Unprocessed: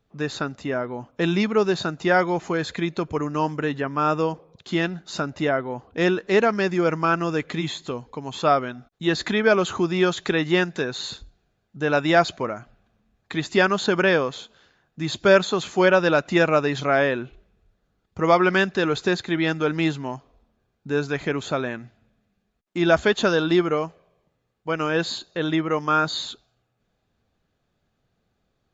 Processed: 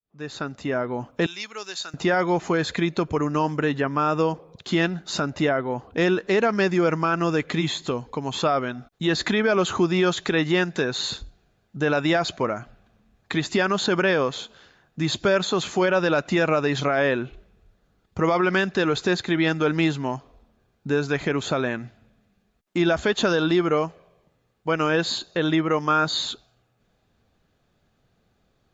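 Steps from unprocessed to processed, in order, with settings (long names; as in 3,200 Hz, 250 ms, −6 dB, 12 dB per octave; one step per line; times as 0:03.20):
fade in at the beginning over 1.03 s
0:01.26–0:01.94: first difference
in parallel at −1.5 dB: downward compressor, threshold −30 dBFS, peak gain reduction 18 dB
on the sum: brickwall limiter −12 dBFS, peak gain reduction 9 dB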